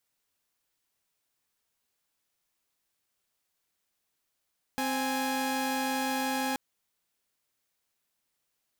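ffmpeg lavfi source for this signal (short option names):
-f lavfi -i "aevalsrc='0.0376*((2*mod(261.63*t,1)-1)+(2*mod(830.61*t,1)-1))':d=1.78:s=44100"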